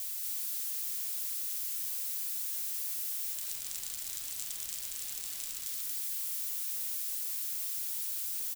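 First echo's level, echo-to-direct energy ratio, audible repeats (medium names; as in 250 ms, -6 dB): -3.0 dB, -3.0 dB, 1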